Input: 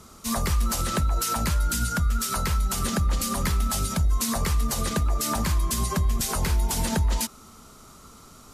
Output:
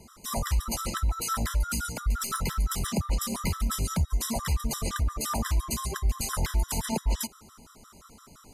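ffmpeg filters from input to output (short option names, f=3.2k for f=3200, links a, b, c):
-filter_complex "[0:a]asettb=1/sr,asplit=3[a][b][c];[a]atrim=end=2.124[d];[b]atrim=start=2.12:end=2.87,asetpts=PTS-STARTPTS,afade=t=in:d=0.004:c=qsin,afade=t=out:st=0.746:d=0.004:c=qsin,aeval=exprs='0.178*(cos(1*acos(clip(val(0)/0.178,-1,1)))-cos(1*PI/2))+0.00501*(cos(8*acos(clip(val(0)/0.178,-1,1)))-cos(8*PI/2))':c=same[e];[c]atrim=start=2.866[f];[d][e]acrossfade=d=0.004:c1=hsin:c2=qsin[g];[g][f]acrossfade=d=0.004:c1=qsin:c2=hsin,afftfilt=real='re*gt(sin(2*PI*5.8*pts/sr)*(1-2*mod(floor(b*sr/1024/1000),2)),0)':imag='im*gt(sin(2*PI*5.8*pts/sr)*(1-2*mod(floor(b*sr/1024/1000),2)),0)':win_size=1024:overlap=0.75,volume=-1dB"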